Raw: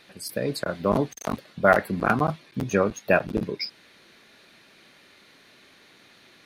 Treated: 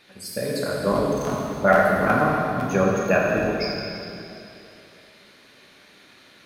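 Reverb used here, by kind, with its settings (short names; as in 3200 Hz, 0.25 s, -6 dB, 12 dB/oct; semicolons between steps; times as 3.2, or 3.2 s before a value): plate-style reverb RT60 2.8 s, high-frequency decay 0.9×, DRR -4 dB; gain -2.5 dB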